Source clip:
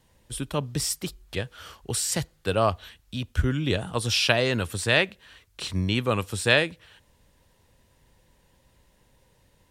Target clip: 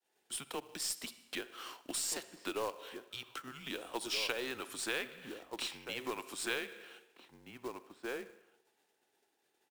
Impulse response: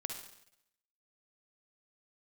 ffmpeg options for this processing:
-filter_complex "[0:a]agate=range=-33dB:threshold=-54dB:ratio=3:detection=peak,asplit=2[a][b];[b]adelay=1574,volume=-9dB,highshelf=f=4k:g=-35.4[c];[a][c]amix=inputs=2:normalize=0,asplit=2[d][e];[1:a]atrim=start_sample=2205,highshelf=f=10k:g=-9[f];[e][f]afir=irnorm=-1:irlink=0,volume=-8.5dB[g];[d][g]amix=inputs=2:normalize=0,acompressor=threshold=-29dB:ratio=4,highpass=f=440:w=0.5412,highpass=f=440:w=1.3066,afreqshift=-130,acrusher=bits=3:mode=log:mix=0:aa=0.000001,aeval=exprs='0.266*(cos(1*acos(clip(val(0)/0.266,-1,1)))-cos(1*PI/2))+0.00596*(cos(8*acos(clip(val(0)/0.266,-1,1)))-cos(8*PI/2))':c=same,volume=-5dB"

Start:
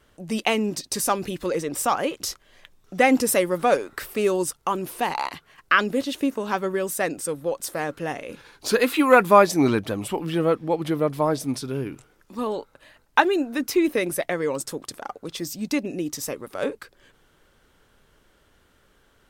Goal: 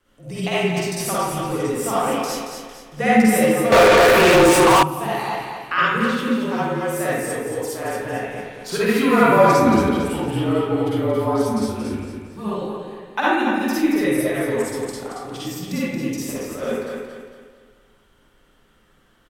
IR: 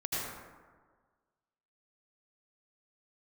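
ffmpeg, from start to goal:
-filter_complex "[0:a]afreqshift=-37,aecho=1:1:227|454|681|908|1135:0.473|0.189|0.0757|0.0303|0.0121[a];[1:a]atrim=start_sample=2205,asetrate=74970,aresample=44100[b];[a][b]afir=irnorm=-1:irlink=0,asettb=1/sr,asplit=3[c][d][e];[c]atrim=end=3.724[f];[d]atrim=start=3.72:end=4.83,asetpts=PTS-STARTPTS,afade=t=in:d=0.004:c=qsin,afade=t=out:st=1.106:d=0.004:c=qsin,asplit=2[g][h];[h]highpass=f=720:p=1,volume=36dB,asoftclip=type=tanh:threshold=-5dB[i];[g][i]amix=inputs=2:normalize=0,lowpass=f=3.4k:p=1,volume=-6dB[j];[e]atrim=start=4.826[k];[f][j]acrossfade=d=0.004:c1=hsin:c2=qsin[l];[l][k]acrossfade=d=0.004:c1=qsin:c2=hsin"

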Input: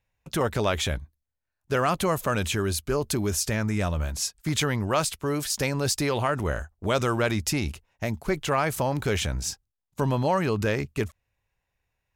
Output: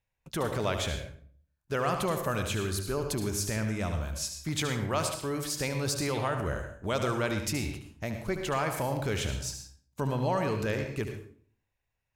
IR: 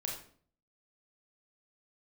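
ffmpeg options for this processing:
-filter_complex "[0:a]asplit=2[a][b];[1:a]atrim=start_sample=2205,adelay=73[c];[b][c]afir=irnorm=-1:irlink=0,volume=-6.5dB[d];[a][d]amix=inputs=2:normalize=0,volume=-6dB"

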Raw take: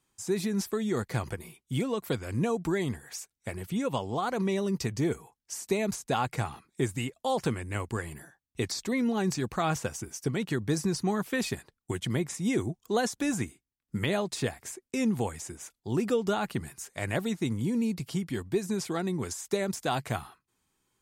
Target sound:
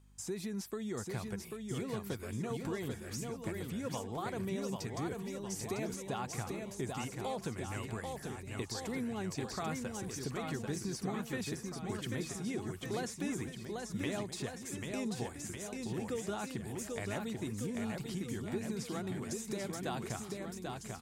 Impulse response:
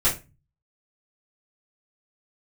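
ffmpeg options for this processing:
-af "aeval=exprs='val(0)+0.001*(sin(2*PI*50*n/s)+sin(2*PI*2*50*n/s)/2+sin(2*PI*3*50*n/s)/3+sin(2*PI*4*50*n/s)/4+sin(2*PI*5*50*n/s)/5)':c=same,acompressor=threshold=-43dB:ratio=2,aecho=1:1:790|1501|2141|2717|3235:0.631|0.398|0.251|0.158|0.1,volume=-1dB"

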